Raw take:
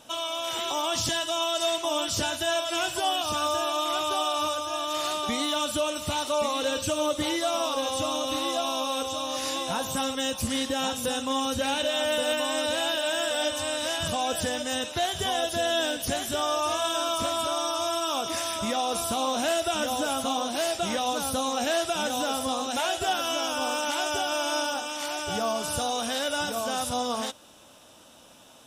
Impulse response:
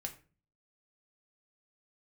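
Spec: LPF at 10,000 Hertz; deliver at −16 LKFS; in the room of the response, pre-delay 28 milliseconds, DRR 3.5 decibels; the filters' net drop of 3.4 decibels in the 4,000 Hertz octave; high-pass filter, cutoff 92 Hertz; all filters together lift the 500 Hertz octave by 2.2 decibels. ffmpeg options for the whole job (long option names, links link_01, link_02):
-filter_complex "[0:a]highpass=92,lowpass=10000,equalizer=frequency=500:width_type=o:gain=3,equalizer=frequency=4000:width_type=o:gain=-4.5,asplit=2[link_01][link_02];[1:a]atrim=start_sample=2205,adelay=28[link_03];[link_02][link_03]afir=irnorm=-1:irlink=0,volume=-1.5dB[link_04];[link_01][link_04]amix=inputs=2:normalize=0,volume=9.5dB"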